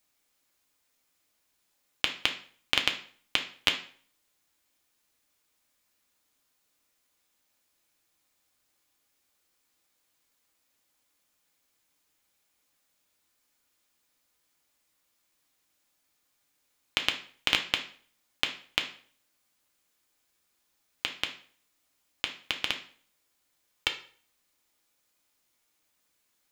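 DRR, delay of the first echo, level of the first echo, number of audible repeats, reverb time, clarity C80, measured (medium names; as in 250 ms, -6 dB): 3.0 dB, no echo, no echo, no echo, 0.50 s, 15.5 dB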